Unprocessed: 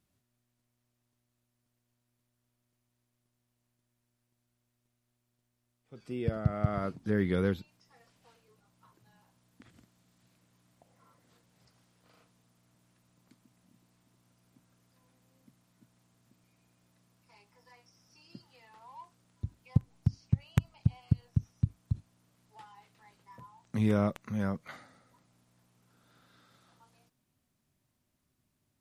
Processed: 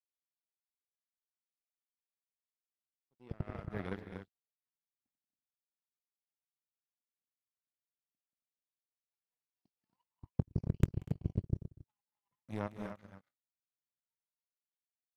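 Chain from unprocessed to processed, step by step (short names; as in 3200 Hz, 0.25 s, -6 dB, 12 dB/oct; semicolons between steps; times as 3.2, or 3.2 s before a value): tempo 1.9×; doubler 21 ms -12.5 dB; loudspeakers at several distances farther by 63 m -8 dB, 83 m -7 dB, 94 m -5 dB; power-law curve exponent 2; gain -1 dB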